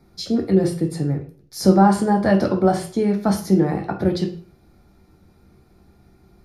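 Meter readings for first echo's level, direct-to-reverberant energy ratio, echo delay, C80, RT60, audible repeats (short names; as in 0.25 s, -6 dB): none, 2.5 dB, none, 14.5 dB, 0.45 s, none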